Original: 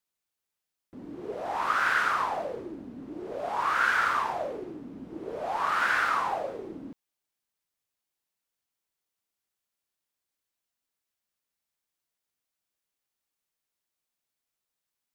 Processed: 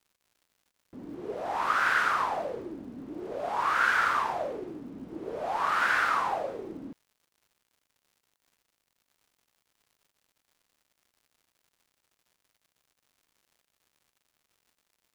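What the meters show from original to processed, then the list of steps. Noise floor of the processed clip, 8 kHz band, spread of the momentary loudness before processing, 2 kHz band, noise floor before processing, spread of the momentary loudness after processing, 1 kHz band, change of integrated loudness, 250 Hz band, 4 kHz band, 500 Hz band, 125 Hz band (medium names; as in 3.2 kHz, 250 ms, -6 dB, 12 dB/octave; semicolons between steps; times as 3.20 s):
-82 dBFS, 0.0 dB, 18 LU, 0.0 dB, under -85 dBFS, 18 LU, 0.0 dB, 0.0 dB, 0.0 dB, 0.0 dB, 0.0 dB, 0.0 dB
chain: crackle 190 per s -55 dBFS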